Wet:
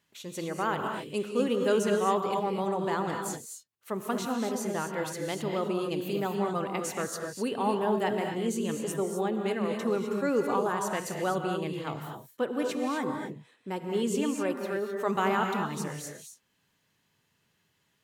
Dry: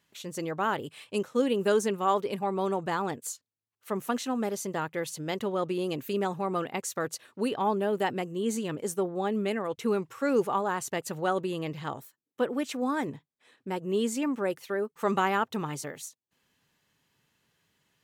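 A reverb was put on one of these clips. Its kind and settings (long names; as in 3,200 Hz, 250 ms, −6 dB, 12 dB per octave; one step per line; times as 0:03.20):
reverb whose tail is shaped and stops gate 280 ms rising, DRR 3 dB
level −2 dB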